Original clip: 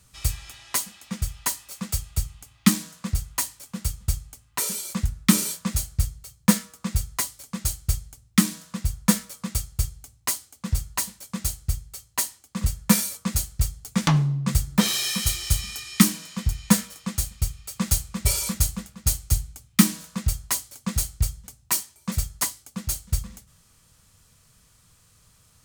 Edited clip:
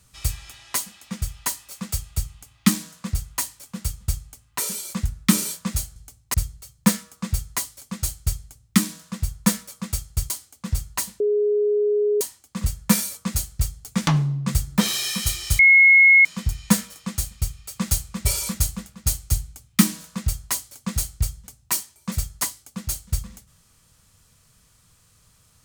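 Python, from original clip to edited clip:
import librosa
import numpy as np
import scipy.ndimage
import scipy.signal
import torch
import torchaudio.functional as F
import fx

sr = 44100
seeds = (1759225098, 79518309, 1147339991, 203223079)

y = fx.edit(x, sr, fx.move(start_s=9.92, length_s=0.38, to_s=5.96),
    fx.bleep(start_s=11.2, length_s=1.01, hz=416.0, db=-17.0),
    fx.bleep(start_s=15.59, length_s=0.66, hz=2170.0, db=-9.0), tone=tone)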